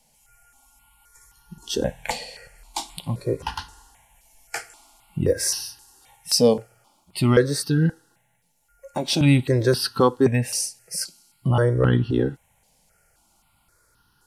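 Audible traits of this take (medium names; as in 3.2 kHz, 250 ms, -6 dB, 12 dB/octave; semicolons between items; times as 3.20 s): notches that jump at a steady rate 3.8 Hz 360–2200 Hz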